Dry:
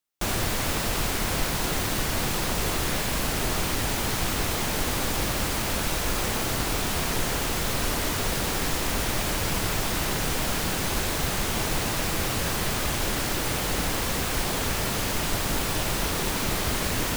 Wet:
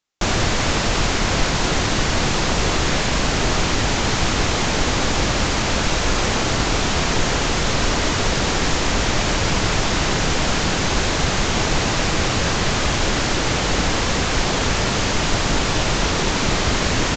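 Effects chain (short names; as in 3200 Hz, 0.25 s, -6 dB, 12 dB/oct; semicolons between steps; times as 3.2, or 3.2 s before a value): downsampling 16000 Hz; gain +8 dB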